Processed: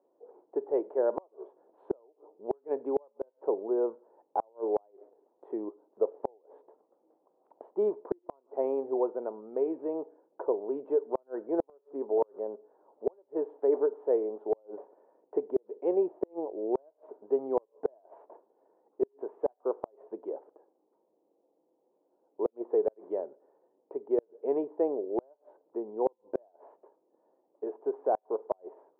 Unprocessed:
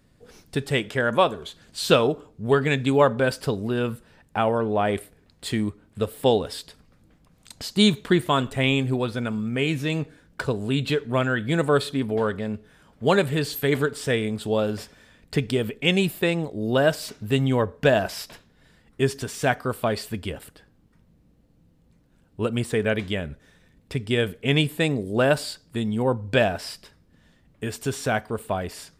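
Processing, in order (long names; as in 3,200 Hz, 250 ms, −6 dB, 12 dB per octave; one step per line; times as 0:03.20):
elliptic band-pass filter 350–930 Hz, stop band 70 dB
gate with flip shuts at −16 dBFS, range −38 dB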